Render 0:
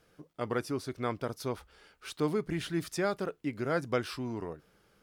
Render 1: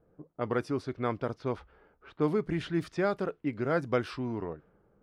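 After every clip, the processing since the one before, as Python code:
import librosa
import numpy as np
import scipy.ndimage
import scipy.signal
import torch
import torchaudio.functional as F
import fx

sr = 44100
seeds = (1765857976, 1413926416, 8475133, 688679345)

y = fx.env_lowpass(x, sr, base_hz=720.0, full_db=-28.5)
y = fx.lowpass(y, sr, hz=2400.0, slope=6)
y = y * 10.0 ** (2.5 / 20.0)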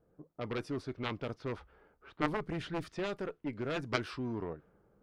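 y = fx.rider(x, sr, range_db=10, speed_s=2.0)
y = fx.cheby_harmonics(y, sr, harmonics=(2, 3), levels_db=(-14, -6), full_scale_db=-14.0)
y = y * 10.0 ** (2.5 / 20.0)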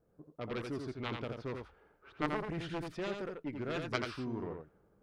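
y = x + 10.0 ** (-5.0 / 20.0) * np.pad(x, (int(85 * sr / 1000.0), 0))[:len(x)]
y = y * 10.0 ** (-2.5 / 20.0)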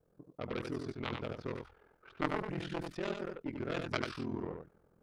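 y = x * np.sin(2.0 * np.pi * 21.0 * np.arange(len(x)) / sr)
y = y * 10.0 ** (3.0 / 20.0)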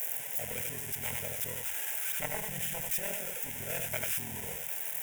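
y = x + 0.5 * 10.0 ** (-20.0 / 20.0) * np.diff(np.sign(x), prepend=np.sign(x[:1]))
y = fx.fixed_phaser(y, sr, hz=1200.0, stages=6)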